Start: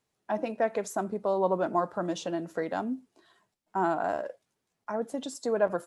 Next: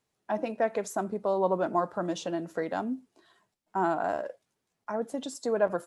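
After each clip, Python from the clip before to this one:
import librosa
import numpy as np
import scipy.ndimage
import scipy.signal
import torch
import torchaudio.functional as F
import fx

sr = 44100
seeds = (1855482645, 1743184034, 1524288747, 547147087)

y = x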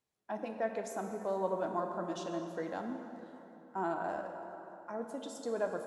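y = fx.rev_plate(x, sr, seeds[0], rt60_s=3.5, hf_ratio=0.6, predelay_ms=0, drr_db=4.0)
y = F.gain(torch.from_numpy(y), -8.5).numpy()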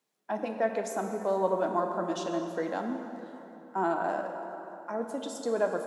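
y = scipy.signal.sosfilt(scipy.signal.butter(4, 170.0, 'highpass', fs=sr, output='sos'), x)
y = F.gain(torch.from_numpy(y), 6.5).numpy()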